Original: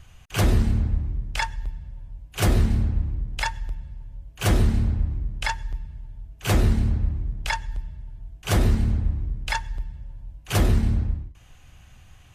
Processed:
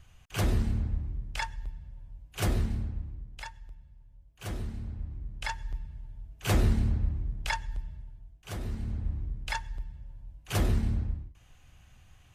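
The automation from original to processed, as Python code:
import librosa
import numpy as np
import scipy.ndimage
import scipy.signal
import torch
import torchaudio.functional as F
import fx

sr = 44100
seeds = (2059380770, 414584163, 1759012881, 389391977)

y = fx.gain(x, sr, db=fx.line((2.41, -7.5), (3.55, -16.5), (4.78, -16.5), (5.74, -5.0), (7.97, -5.0), (8.57, -17.5), (9.16, -7.0)))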